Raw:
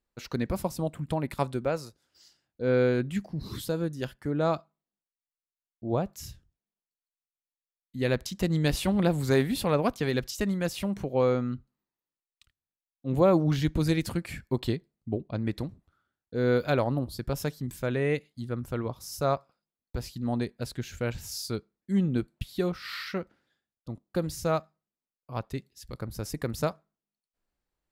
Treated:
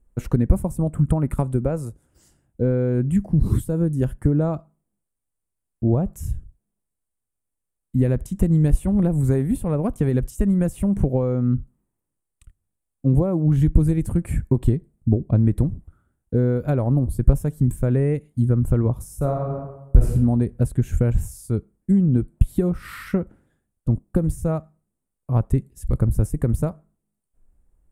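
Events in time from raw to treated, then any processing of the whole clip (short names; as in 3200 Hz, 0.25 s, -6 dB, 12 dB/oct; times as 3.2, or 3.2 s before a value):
0.79–1.36 bell 1300 Hz +5.5 dB -> +13 dB 0.38 oct
19.17–20.12 reverb throw, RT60 0.8 s, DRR -0.5 dB
whole clip: resonant high shelf 6500 Hz +13.5 dB, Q 3; compressor 12:1, threshold -31 dBFS; tilt -4.5 dB/oct; gain +6.5 dB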